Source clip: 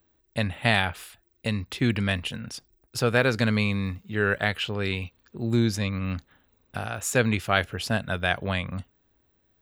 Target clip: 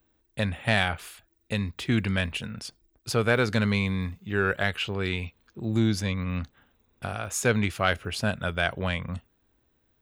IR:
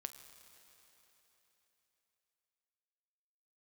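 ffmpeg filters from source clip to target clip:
-filter_complex "[0:a]asplit=2[s0][s1];[s1]asoftclip=type=tanh:threshold=0.224,volume=0.668[s2];[s0][s2]amix=inputs=2:normalize=0,asetrate=42336,aresample=44100,volume=0.562"

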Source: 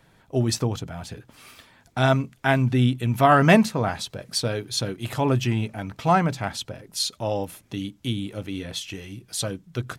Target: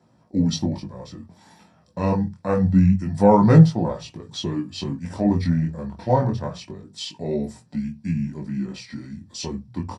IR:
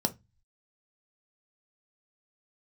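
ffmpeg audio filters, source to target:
-filter_complex "[0:a]asetrate=32097,aresample=44100,atempo=1.37395,flanger=delay=18:depth=6.1:speed=0.26[s0];[1:a]atrim=start_sample=2205,atrim=end_sample=6174[s1];[s0][s1]afir=irnorm=-1:irlink=0,volume=0.422"

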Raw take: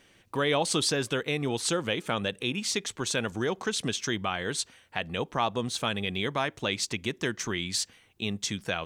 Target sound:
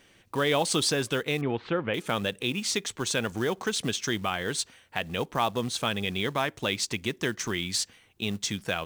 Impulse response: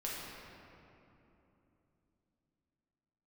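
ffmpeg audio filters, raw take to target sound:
-filter_complex "[0:a]acrusher=bits=5:mode=log:mix=0:aa=0.000001,asettb=1/sr,asplit=3[s0][s1][s2];[s0]atrim=end=1.414[s3];[s1]atrim=start=1.41:end=1.94,asetpts=PTS-STARTPTS,afade=t=in:d=0.004:c=qsin,afade=t=out:st=0.526:d=0.004:c=qsin,lowpass=f=2500:w=0.5412,lowpass=f=2500:w=1.3066[s4];[s2]atrim=start=1.936[s5];[s3][s4]acrossfade=d=0.004:c1=hsin:c2=qsin[s6];[s6][s5]acrossfade=d=0.004:c1=qsin:c2=hsin,volume=1.12"

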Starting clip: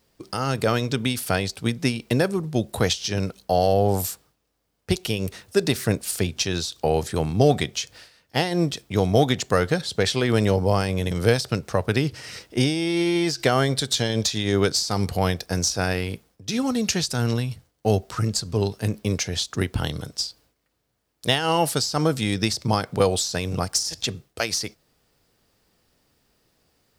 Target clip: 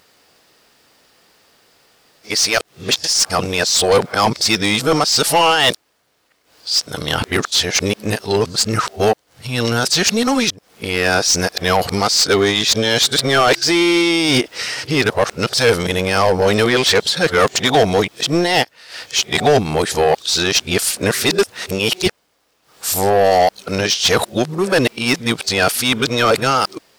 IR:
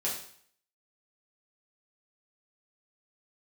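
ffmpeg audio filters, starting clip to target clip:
-filter_complex "[0:a]areverse,asplit=2[s0][s1];[s1]highpass=f=720:p=1,volume=12.6,asoftclip=type=tanh:threshold=0.708[s2];[s0][s2]amix=inputs=2:normalize=0,lowpass=f=6000:p=1,volume=0.501"

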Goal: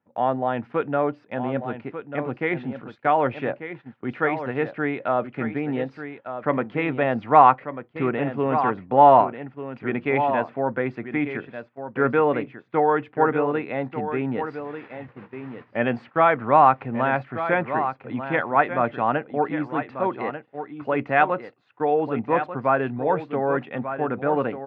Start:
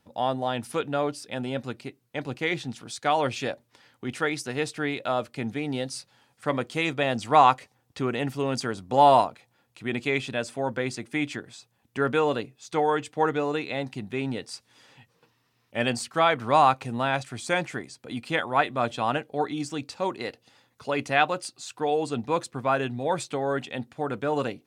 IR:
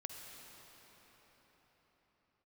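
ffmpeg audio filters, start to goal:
-filter_complex "[0:a]asettb=1/sr,asplit=3[s0][s1][s2];[s0]atrim=end=14.344[s3];[s1]atrim=start=14.34:end=15.77,asetpts=PTS-STARTPTS,afade=t=in:d=0.004:c=qsin,afade=t=out:st=1.426:d=0.004:c=qsin,aeval=exprs='val(0)+0.5*0.00668*sgn(val(0))':c=same[s4];[s2]atrim=start=15.766[s5];[s3][s4]acrossfade=d=0.004:c1=hsin:c2=qsin[s6];[s6][s5]acrossfade=d=0.004:c1=qsin:c2=hsin,lowpass=f=2100:w=0.5412,lowpass=f=2100:w=1.3066,asplit=2[s7][s8];[s8]aecho=0:1:1192:0.316[s9];[s7][s9]amix=inputs=2:normalize=0,agate=range=0.251:threshold=0.00631:ratio=16:detection=peak,highpass=120,volume=1.58"

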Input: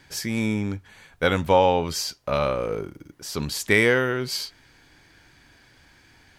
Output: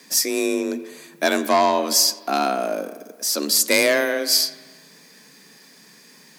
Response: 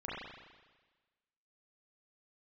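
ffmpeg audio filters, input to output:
-filter_complex "[0:a]aeval=exprs='0.596*sin(PI/2*1.78*val(0)/0.596)':c=same,afreqshift=140,aexciter=amount=4.2:drive=2.7:freq=4300,asplit=2[s0][s1];[1:a]atrim=start_sample=2205,lowpass=8000,adelay=88[s2];[s1][s2]afir=irnorm=-1:irlink=0,volume=0.141[s3];[s0][s3]amix=inputs=2:normalize=0,volume=0.473"

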